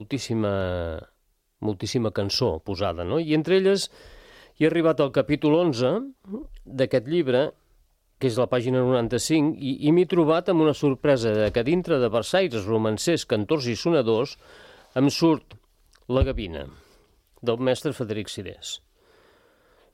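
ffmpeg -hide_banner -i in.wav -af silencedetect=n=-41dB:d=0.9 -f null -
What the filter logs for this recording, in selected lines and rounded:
silence_start: 18.78
silence_end: 19.94 | silence_duration: 1.16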